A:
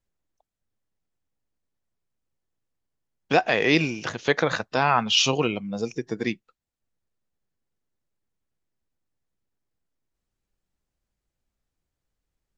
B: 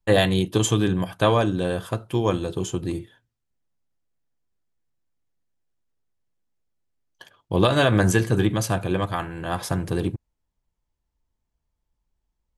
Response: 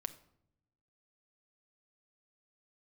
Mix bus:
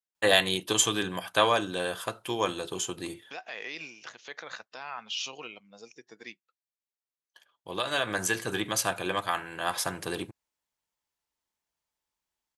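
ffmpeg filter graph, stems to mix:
-filter_complex "[0:a]alimiter=limit=-12dB:level=0:latency=1:release=69,volume=-10.5dB,asplit=2[a][b];[1:a]adelay=150,volume=3dB[c];[b]apad=whole_len=560964[d];[c][d]sidechaincompress=threshold=-57dB:ratio=4:attack=11:release=1400[e];[a][e]amix=inputs=2:normalize=0,highpass=f=1.3k:p=1"

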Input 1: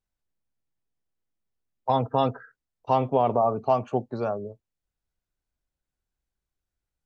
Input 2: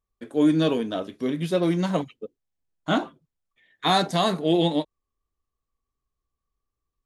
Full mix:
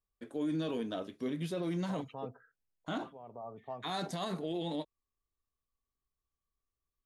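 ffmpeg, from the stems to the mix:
-filter_complex "[0:a]highshelf=f=2.6k:g=-10,volume=-12dB,afade=t=out:st=2.69:d=0.22:silence=0.398107[a];[1:a]volume=-8dB,asplit=2[b][c];[c]apad=whole_len=311026[d];[a][d]sidechaincompress=threshold=-44dB:ratio=4:attack=25:release=440[e];[e][b]amix=inputs=2:normalize=0,alimiter=level_in=3.5dB:limit=-24dB:level=0:latency=1:release=36,volume=-3.5dB"

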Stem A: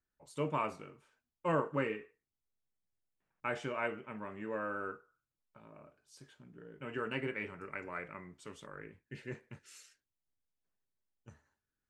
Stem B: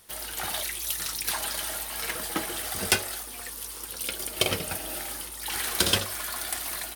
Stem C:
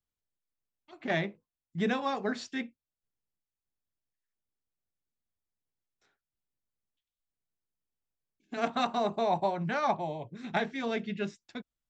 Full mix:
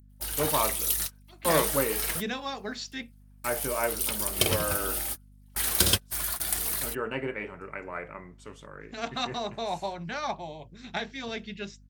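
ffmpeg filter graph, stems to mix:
-filter_complex "[0:a]adynamicequalizer=threshold=0.00355:dfrequency=680:dqfactor=0.92:tfrequency=680:tqfactor=0.92:attack=5:release=100:ratio=0.375:range=3.5:mode=boostabove:tftype=bell,volume=2.5dB,asplit=2[a][b];[1:a]lowshelf=f=150:g=11.5,crystalizer=i=1:c=0,volume=-3dB[c];[2:a]equalizer=f=5.1k:w=0.58:g=11.5,adelay=400,volume=-5dB[d];[b]apad=whole_len=306538[e];[c][e]sidechaingate=range=-43dB:threshold=-60dB:ratio=16:detection=peak[f];[a][f][d]amix=inputs=3:normalize=0,aeval=exprs='val(0)+0.00224*(sin(2*PI*50*n/s)+sin(2*PI*2*50*n/s)/2+sin(2*PI*3*50*n/s)/3+sin(2*PI*4*50*n/s)/4+sin(2*PI*5*50*n/s)/5)':c=same"

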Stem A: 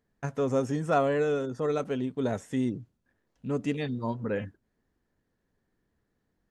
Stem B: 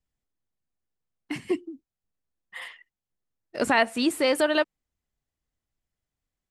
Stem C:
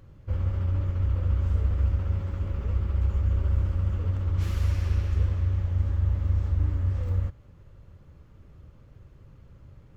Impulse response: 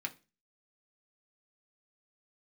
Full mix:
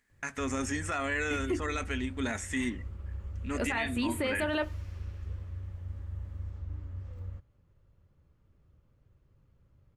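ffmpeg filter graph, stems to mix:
-filter_complex "[0:a]equalizer=f=125:t=o:w=1:g=-12,equalizer=f=500:t=o:w=1:g=-10,equalizer=f=2k:t=o:w=1:g=11,equalizer=f=8k:t=o:w=1:g=10,volume=-1dB,asplit=3[a][b][c];[b]volume=-7dB[d];[1:a]equalizer=f=5.2k:w=2.1:g=-13,volume=0.5dB,asplit=2[e][f];[f]volume=-10.5dB[g];[2:a]adelay=100,volume=-14.5dB[h];[c]apad=whole_len=286800[i];[e][i]sidechaincompress=threshold=-42dB:ratio=8:attack=16:release=207[j];[3:a]atrim=start_sample=2205[k];[d][g]amix=inputs=2:normalize=0[l];[l][k]afir=irnorm=-1:irlink=0[m];[a][j][h][m]amix=inputs=4:normalize=0,alimiter=limit=-22dB:level=0:latency=1:release=20"

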